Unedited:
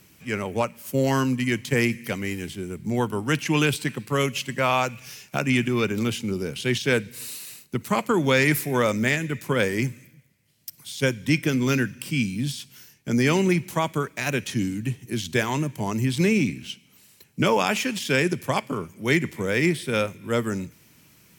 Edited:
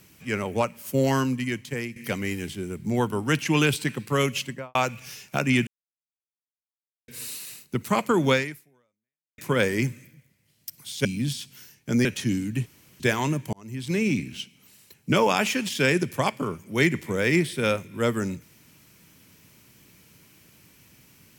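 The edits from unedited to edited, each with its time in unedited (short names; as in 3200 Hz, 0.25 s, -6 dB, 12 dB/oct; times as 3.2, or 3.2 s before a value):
1.04–1.96 fade out linear, to -14.5 dB
4.38–4.75 studio fade out
5.67–7.08 mute
8.33–9.38 fade out exponential
11.05–12.24 cut
13.24–14.35 cut
14.96–15.3 room tone
15.83–16.57 fade in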